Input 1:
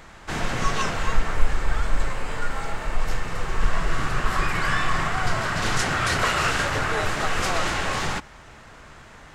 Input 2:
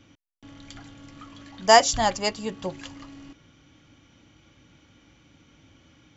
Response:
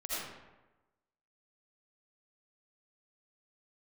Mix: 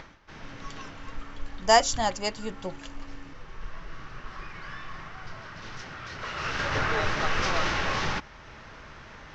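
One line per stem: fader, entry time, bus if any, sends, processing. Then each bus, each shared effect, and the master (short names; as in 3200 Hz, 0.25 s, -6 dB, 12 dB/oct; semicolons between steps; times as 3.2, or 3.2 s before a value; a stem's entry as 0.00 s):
-1.5 dB, 0.00 s, no send, elliptic low-pass 5900 Hz, stop band 70 dB; notch 720 Hz, Q 15; upward compressor, threshold -39 dBFS; auto duck -15 dB, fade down 0.20 s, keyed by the second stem
-4.0 dB, 0.00 s, no send, dry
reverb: off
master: dry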